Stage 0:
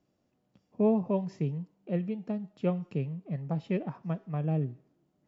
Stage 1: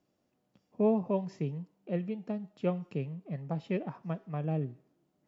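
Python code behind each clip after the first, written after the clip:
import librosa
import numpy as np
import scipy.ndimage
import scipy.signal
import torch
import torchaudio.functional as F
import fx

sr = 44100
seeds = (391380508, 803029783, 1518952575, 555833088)

y = fx.low_shelf(x, sr, hz=170.0, db=-6.5)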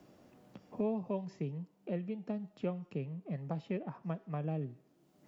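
y = fx.band_squash(x, sr, depth_pct=70)
y = F.gain(torch.from_numpy(y), -4.5).numpy()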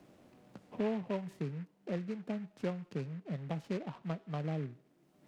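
y = fx.noise_mod_delay(x, sr, seeds[0], noise_hz=1600.0, depth_ms=0.055)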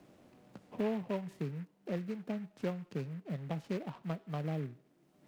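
y = fx.block_float(x, sr, bits=7)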